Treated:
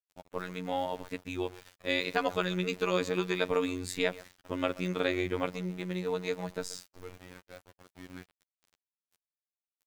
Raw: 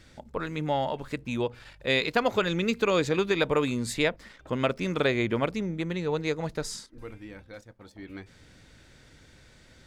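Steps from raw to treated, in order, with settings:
far-end echo of a speakerphone 130 ms, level −17 dB
centre clipping without the shift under −43.5 dBFS
phases set to zero 90.8 Hz
level −2.5 dB

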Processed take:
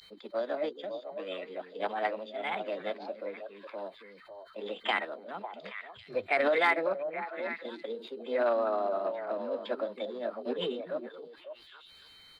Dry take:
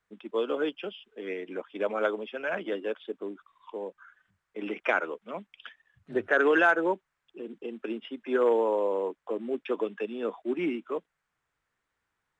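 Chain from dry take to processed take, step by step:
echo through a band-pass that steps 275 ms, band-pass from 200 Hz, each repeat 1.4 octaves, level −4.5 dB
steady tone 3,100 Hz −49 dBFS
formants moved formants +5 semitones
level −3.5 dB

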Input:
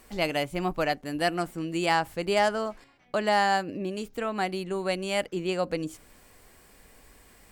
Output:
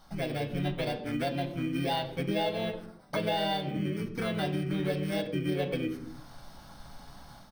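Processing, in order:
samples in bit-reversed order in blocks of 16 samples
in parallel at −12 dB: hard clipping −24 dBFS, distortion −9 dB
on the sum: phaser swept by the level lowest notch 460 Hz, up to 1,400 Hz, full sweep at −21.5 dBFS
pitch-shifted copies added −12 semitones −9 dB, −4 semitones −1 dB
automatic gain control gain up to 8 dB
convolution reverb RT60 0.55 s, pre-delay 6 ms, DRR 4 dB
downward compressor 3 to 1, threshold −27 dBFS, peak gain reduction 12 dB
Savitzky-Golay smoothing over 15 samples
low-shelf EQ 83 Hz −10 dB
level −2 dB

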